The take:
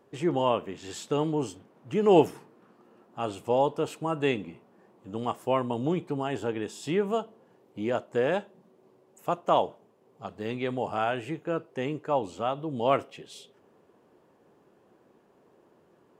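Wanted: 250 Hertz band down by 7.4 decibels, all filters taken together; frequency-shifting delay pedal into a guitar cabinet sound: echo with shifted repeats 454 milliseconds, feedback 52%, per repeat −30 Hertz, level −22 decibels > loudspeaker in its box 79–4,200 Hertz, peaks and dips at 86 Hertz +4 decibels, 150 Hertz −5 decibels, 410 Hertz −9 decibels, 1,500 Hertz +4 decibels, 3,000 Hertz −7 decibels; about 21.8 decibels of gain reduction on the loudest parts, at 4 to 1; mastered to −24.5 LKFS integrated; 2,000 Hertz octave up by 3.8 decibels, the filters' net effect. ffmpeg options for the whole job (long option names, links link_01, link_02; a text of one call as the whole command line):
ffmpeg -i in.wav -filter_complex "[0:a]equalizer=frequency=250:width_type=o:gain=-7.5,equalizer=frequency=2000:width_type=o:gain=4,acompressor=threshold=-44dB:ratio=4,asplit=5[link_01][link_02][link_03][link_04][link_05];[link_02]adelay=454,afreqshift=-30,volume=-22dB[link_06];[link_03]adelay=908,afreqshift=-60,volume=-27.7dB[link_07];[link_04]adelay=1362,afreqshift=-90,volume=-33.4dB[link_08];[link_05]adelay=1816,afreqshift=-120,volume=-39dB[link_09];[link_01][link_06][link_07][link_08][link_09]amix=inputs=5:normalize=0,highpass=79,equalizer=frequency=86:width_type=q:width=4:gain=4,equalizer=frequency=150:width_type=q:width=4:gain=-5,equalizer=frequency=410:width_type=q:width=4:gain=-9,equalizer=frequency=1500:width_type=q:width=4:gain=4,equalizer=frequency=3000:width_type=q:width=4:gain=-7,lowpass=frequency=4200:width=0.5412,lowpass=frequency=4200:width=1.3066,volume=23.5dB" out.wav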